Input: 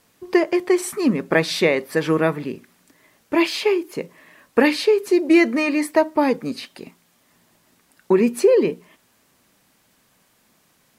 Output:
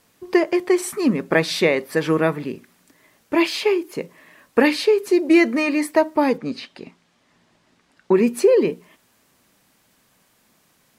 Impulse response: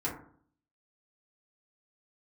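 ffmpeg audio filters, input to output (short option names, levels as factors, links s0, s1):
-filter_complex "[0:a]asplit=3[s0][s1][s2];[s0]afade=t=out:st=6.37:d=0.02[s3];[s1]lowpass=5300,afade=t=in:st=6.37:d=0.02,afade=t=out:st=8.13:d=0.02[s4];[s2]afade=t=in:st=8.13:d=0.02[s5];[s3][s4][s5]amix=inputs=3:normalize=0"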